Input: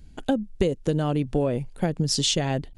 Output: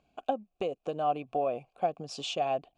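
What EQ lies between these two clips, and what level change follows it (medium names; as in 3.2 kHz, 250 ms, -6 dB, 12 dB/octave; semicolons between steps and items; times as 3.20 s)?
vowel filter a; peaking EQ 7.3 kHz +3.5 dB 0.46 oct; +7.0 dB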